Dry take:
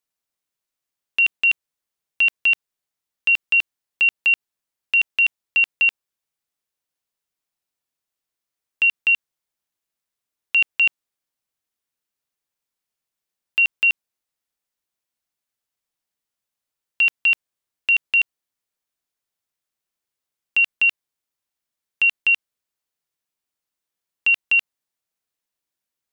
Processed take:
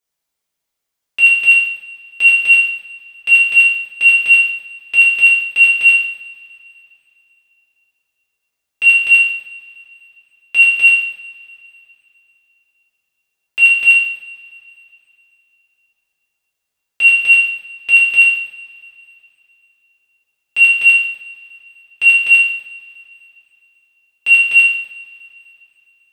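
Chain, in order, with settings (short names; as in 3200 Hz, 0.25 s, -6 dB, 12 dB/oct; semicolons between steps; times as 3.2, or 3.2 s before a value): in parallel at -6 dB: soft clip -21 dBFS, distortion -12 dB; on the sum: two-slope reverb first 0.73 s, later 3.2 s, from -21 dB, DRR -8 dB; gain -5 dB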